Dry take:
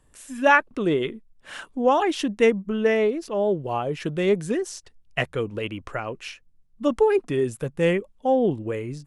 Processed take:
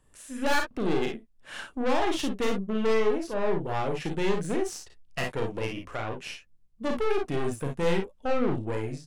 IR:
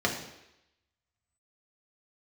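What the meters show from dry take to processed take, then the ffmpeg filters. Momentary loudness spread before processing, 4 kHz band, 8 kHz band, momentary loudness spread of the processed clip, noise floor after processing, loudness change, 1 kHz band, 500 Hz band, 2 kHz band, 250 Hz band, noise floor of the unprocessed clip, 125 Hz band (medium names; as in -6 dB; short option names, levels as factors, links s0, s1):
13 LU, -1.5 dB, -1.0 dB, 12 LU, -60 dBFS, -6.0 dB, -6.5 dB, -6.0 dB, -7.0 dB, -4.5 dB, -59 dBFS, -3.0 dB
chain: -af "aeval=exprs='(tanh(17.8*val(0)+0.7)-tanh(0.7))/17.8':c=same,aecho=1:1:36|52|64:0.501|0.473|0.282"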